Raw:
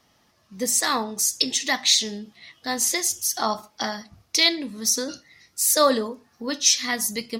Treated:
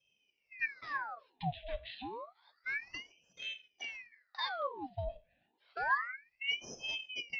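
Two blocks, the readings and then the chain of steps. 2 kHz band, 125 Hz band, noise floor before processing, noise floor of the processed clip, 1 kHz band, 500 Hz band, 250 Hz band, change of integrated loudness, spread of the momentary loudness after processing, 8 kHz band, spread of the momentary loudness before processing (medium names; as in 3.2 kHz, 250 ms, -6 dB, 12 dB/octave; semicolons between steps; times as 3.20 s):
-7.5 dB, no reading, -64 dBFS, -80 dBFS, -11.5 dB, -18.0 dB, -22.0 dB, -17.5 dB, 14 LU, -37.5 dB, 14 LU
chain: cascade formant filter i; frequency shift +31 Hz; ring modulator with a swept carrier 1.6 kHz, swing 80%, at 0.29 Hz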